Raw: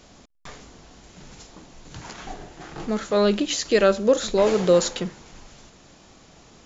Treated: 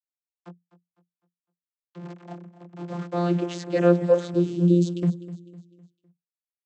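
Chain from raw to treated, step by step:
hold until the input has moved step −30 dBFS
channel vocoder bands 32, saw 174 Hz
0:04.34–0:05.03: elliptic band-stop filter 370–2,900 Hz, stop band 40 dB
on a send: repeating echo 253 ms, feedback 42%, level −16 dB

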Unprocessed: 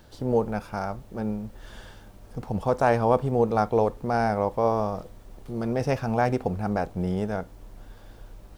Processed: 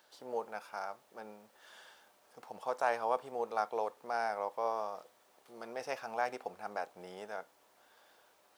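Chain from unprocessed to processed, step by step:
high-pass filter 700 Hz 12 dB per octave
level −7 dB

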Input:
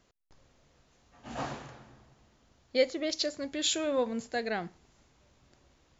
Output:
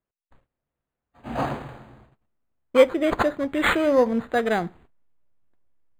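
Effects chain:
noise gate −58 dBFS, range −28 dB
in parallel at −7.5 dB: slack as between gear wheels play −38 dBFS
on the sum: linearly interpolated sample-rate reduction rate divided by 8×
level +8 dB

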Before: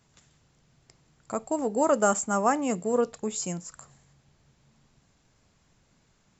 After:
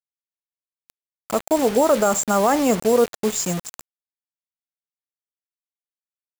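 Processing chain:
dynamic equaliser 580 Hz, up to +4 dB, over −36 dBFS, Q 1
brickwall limiter −15.5 dBFS, peak gain reduction 8.5 dB
bit-depth reduction 6 bits, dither none
level +7.5 dB

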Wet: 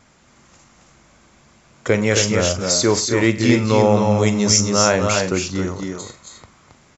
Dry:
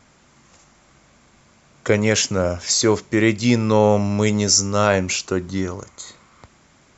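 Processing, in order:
multi-tap delay 44/100/245/272/311 ms −14/−18.5/−12.5/−4.5/−14.5 dB

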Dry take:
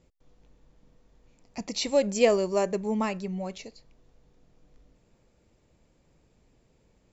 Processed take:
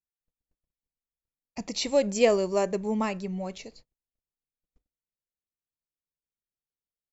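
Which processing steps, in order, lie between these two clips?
noise gate −51 dBFS, range −42 dB

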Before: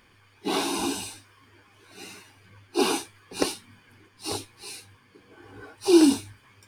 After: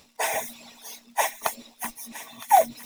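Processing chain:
noise reduction from a noise print of the clip's start 8 dB
reversed playback
upward compression, threshold −33 dBFS
reversed playback
surface crackle 79 per second −44 dBFS
wrong playback speed 33 rpm record played at 78 rpm
delay with a high-pass on its return 962 ms, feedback 36%, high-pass 1,500 Hz, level −12 dB
level +1 dB

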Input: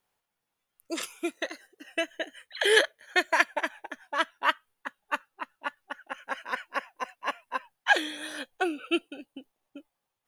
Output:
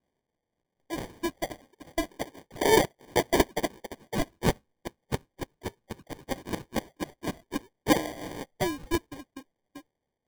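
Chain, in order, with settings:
decimation without filtering 33×

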